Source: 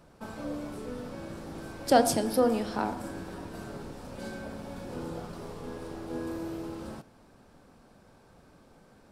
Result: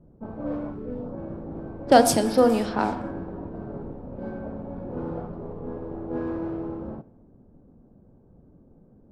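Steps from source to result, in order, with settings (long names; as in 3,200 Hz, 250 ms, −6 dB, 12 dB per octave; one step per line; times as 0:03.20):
low-pass that shuts in the quiet parts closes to 310 Hz, open at −23.5 dBFS
0:00.71–0:01.17: parametric band 490 Hz → 2,900 Hz −11.5 dB 0.82 octaves
level +6 dB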